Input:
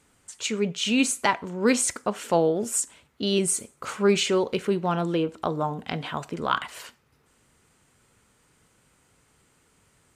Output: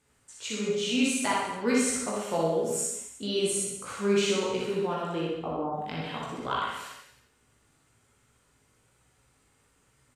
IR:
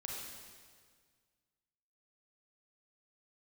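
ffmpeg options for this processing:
-filter_complex "[0:a]asplit=3[a][b][c];[a]afade=t=out:st=5.25:d=0.02[d];[b]lowpass=f=1.1k:w=0.5412,lowpass=f=1.1k:w=1.3066,afade=t=in:st=5.25:d=0.02,afade=t=out:st=5.73:d=0.02[e];[c]afade=t=in:st=5.73:d=0.02[f];[d][e][f]amix=inputs=3:normalize=0[g];[1:a]atrim=start_sample=2205,atrim=end_sample=4410[h];[g][h]afir=irnorm=-1:irlink=0,flanger=delay=16:depth=3.4:speed=1.1,aecho=1:1:60|126|198.6|278.5|366.3:0.631|0.398|0.251|0.158|0.1"

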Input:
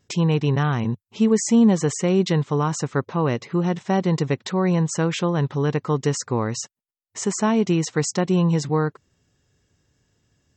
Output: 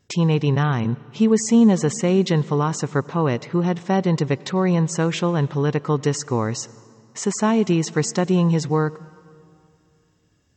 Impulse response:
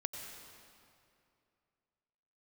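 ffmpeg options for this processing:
-filter_complex "[0:a]asplit=2[a][b];[1:a]atrim=start_sample=2205,lowpass=6.9k[c];[b][c]afir=irnorm=-1:irlink=0,volume=-14.5dB[d];[a][d]amix=inputs=2:normalize=0"

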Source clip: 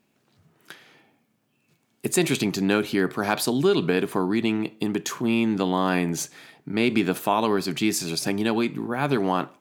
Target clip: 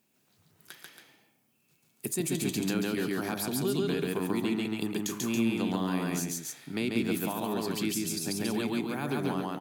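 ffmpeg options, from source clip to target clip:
-filter_complex "[0:a]crystalizer=i=2:c=0,aecho=1:1:139.9|277:0.891|0.447,acrossover=split=340[a][b];[b]acompressor=threshold=-25dB:ratio=5[c];[a][c]amix=inputs=2:normalize=0,volume=-8dB"

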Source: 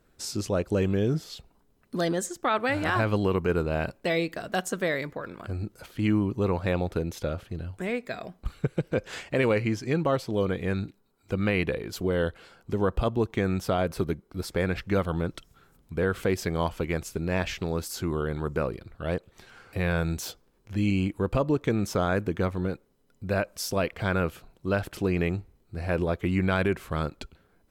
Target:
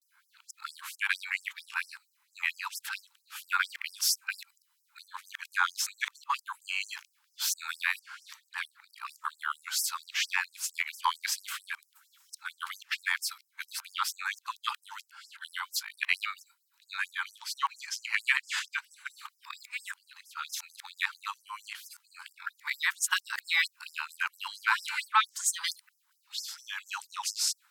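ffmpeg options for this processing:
-af "areverse,acontrast=78,afftfilt=real='re*gte(b*sr/1024,800*pow(5100/800,0.5+0.5*sin(2*PI*4.4*pts/sr)))':imag='im*gte(b*sr/1024,800*pow(5100/800,0.5+0.5*sin(2*PI*4.4*pts/sr)))':win_size=1024:overlap=0.75"

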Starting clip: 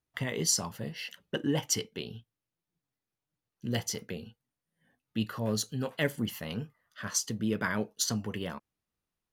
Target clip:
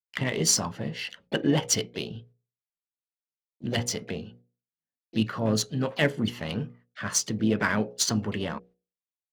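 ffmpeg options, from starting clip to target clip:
-filter_complex "[0:a]agate=range=-37dB:threshold=-59dB:ratio=16:detection=peak,adynamicsmooth=sensitivity=8:basefreq=4.3k,bandreject=f=60:t=h:w=6,bandreject=f=120:t=h:w=6,bandreject=f=180:t=h:w=6,bandreject=f=240:t=h:w=6,bandreject=f=300:t=h:w=6,bandreject=f=360:t=h:w=6,bandreject=f=420:t=h:w=6,bandreject=f=480:t=h:w=6,bandreject=f=540:t=h:w=6,asplit=3[a][b][c];[b]asetrate=52444,aresample=44100,atempo=0.840896,volume=-14dB[d];[c]asetrate=66075,aresample=44100,atempo=0.66742,volume=-17dB[e];[a][d][e]amix=inputs=3:normalize=0,volume=6dB"

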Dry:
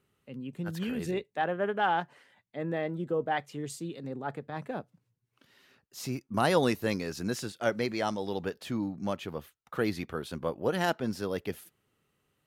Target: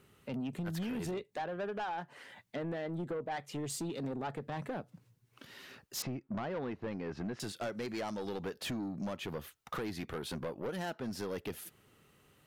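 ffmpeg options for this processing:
-filter_complex "[0:a]asplit=2[a][b];[b]asoftclip=type=hard:threshold=-21.5dB,volume=-6dB[c];[a][c]amix=inputs=2:normalize=0,acompressor=threshold=-37dB:ratio=16,asettb=1/sr,asplit=3[d][e][f];[d]atrim=end=6.024[g];[e]atrim=start=6.02:end=7.4,asetpts=PTS-STARTPTS,afade=t=in:d=0.004:c=qsin,afade=t=out:st=1.376:d=0.004:c=qsin,lowpass=1.8k[h];[f]atrim=start=7.396[i];[g][h]acrossfade=d=0.004:c1=hsin:c2=qsin[j];[j][i]acrossfade=d=0.004:c1=qsin:c2=hsin,asoftclip=type=tanh:threshold=-39dB,volume=6.5dB"

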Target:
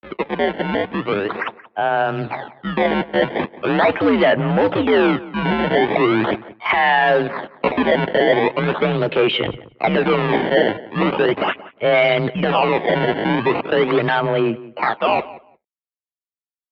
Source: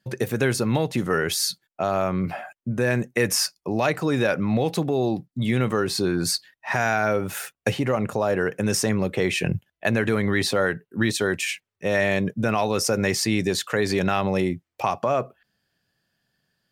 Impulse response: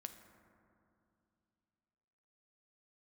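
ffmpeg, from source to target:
-filter_complex "[0:a]dynaudnorm=f=320:g=17:m=14dB,aresample=11025,asoftclip=type=hard:threshold=-14dB,aresample=44100,tremolo=f=83:d=0.261,acrusher=samples=24:mix=1:aa=0.000001:lfo=1:lforange=38.4:lforate=0.4,aeval=exprs='sgn(val(0))*max(abs(val(0))-0.00335,0)':c=same,asetrate=55563,aresample=44100,atempo=0.793701,asplit=2[a][b];[b]adelay=177,lowpass=f=2.3k:p=1,volume=-17.5dB,asplit=2[c][d];[d]adelay=177,lowpass=f=2.3k:p=1,volume=0.17[e];[a][c][e]amix=inputs=3:normalize=0,highpass=f=310:t=q:w=0.5412,highpass=f=310:t=q:w=1.307,lowpass=f=3.3k:t=q:w=0.5176,lowpass=f=3.3k:t=q:w=0.7071,lowpass=f=3.3k:t=q:w=1.932,afreqshift=-100,volume=6dB"

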